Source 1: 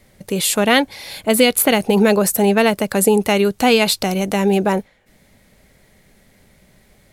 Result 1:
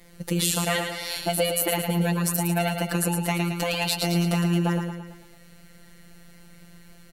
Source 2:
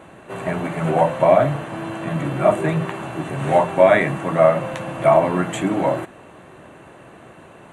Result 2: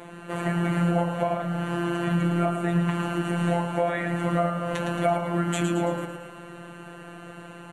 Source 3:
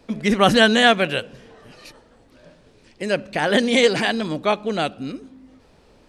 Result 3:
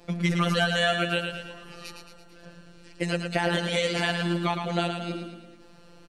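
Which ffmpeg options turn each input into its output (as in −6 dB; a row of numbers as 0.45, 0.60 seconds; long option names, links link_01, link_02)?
-af "acompressor=threshold=-24dB:ratio=4,afftfilt=real='hypot(re,im)*cos(PI*b)':imag='0':win_size=1024:overlap=0.75,aecho=1:1:111|222|333|444|555|666:0.501|0.261|0.136|0.0705|0.0366|0.0191,volume=4dB"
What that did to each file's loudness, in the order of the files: −8.5, −7.0, −8.0 LU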